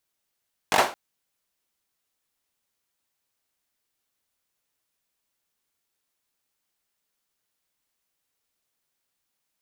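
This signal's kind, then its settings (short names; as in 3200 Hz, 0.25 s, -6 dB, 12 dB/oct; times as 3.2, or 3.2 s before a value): hand clap length 0.22 s, apart 20 ms, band 730 Hz, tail 0.32 s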